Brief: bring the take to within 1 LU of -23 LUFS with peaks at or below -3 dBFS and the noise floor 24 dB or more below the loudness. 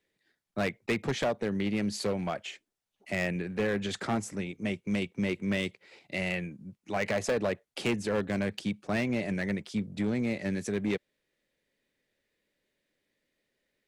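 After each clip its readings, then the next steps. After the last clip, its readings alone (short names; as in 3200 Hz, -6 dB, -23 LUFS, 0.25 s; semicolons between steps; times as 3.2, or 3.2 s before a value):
clipped 1.5%; flat tops at -23.0 dBFS; loudness -32.0 LUFS; peak -23.0 dBFS; loudness target -23.0 LUFS
-> clip repair -23 dBFS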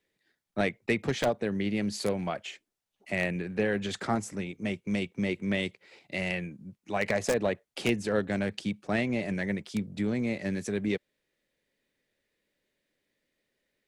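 clipped 0.0%; loudness -31.0 LUFS; peak -14.0 dBFS; loudness target -23.0 LUFS
-> gain +8 dB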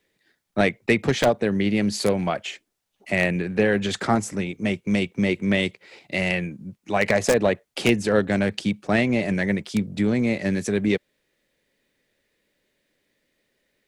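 loudness -23.0 LUFS; peak -6.0 dBFS; noise floor -74 dBFS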